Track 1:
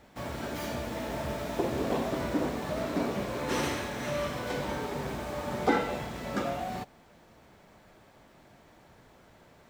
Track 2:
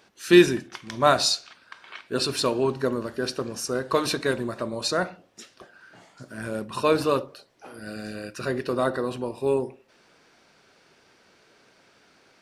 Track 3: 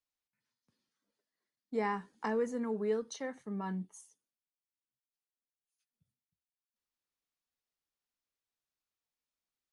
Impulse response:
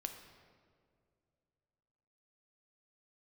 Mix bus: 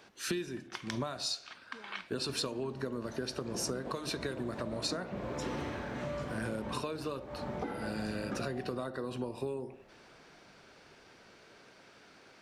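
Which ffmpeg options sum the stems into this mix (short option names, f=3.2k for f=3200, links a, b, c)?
-filter_complex "[0:a]lowpass=f=1.7k:p=1,dynaudnorm=f=380:g=11:m=14dB,adelay=1950,volume=-13.5dB[a];[1:a]volume=1dB[b];[2:a]alimiter=level_in=10dB:limit=-24dB:level=0:latency=1,volume=-10dB,volume=-11.5dB[c];[a][b]amix=inputs=2:normalize=0,highshelf=f=6.4k:g=-5,acompressor=threshold=-30dB:ratio=16,volume=0dB[d];[c][d]amix=inputs=2:normalize=0,acrossover=split=260|3000[e][f][g];[f]acompressor=threshold=-39dB:ratio=2[h];[e][h][g]amix=inputs=3:normalize=0"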